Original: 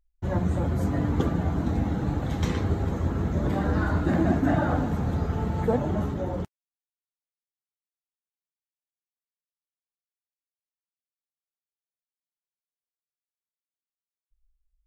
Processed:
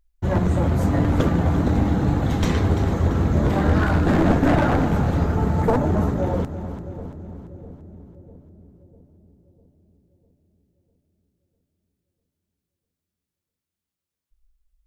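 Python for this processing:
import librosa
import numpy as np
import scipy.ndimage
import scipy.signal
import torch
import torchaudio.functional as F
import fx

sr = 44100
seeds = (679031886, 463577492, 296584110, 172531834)

y = np.minimum(x, 2.0 * 10.0 ** (-21.0 / 20.0) - x)
y = fx.peak_eq(y, sr, hz=3200.0, db=-6.5, octaves=1.1, at=(5.25, 6.23))
y = fx.echo_split(y, sr, split_hz=500.0, low_ms=650, high_ms=340, feedback_pct=52, wet_db=-12.0)
y = y * librosa.db_to_amplitude(6.5)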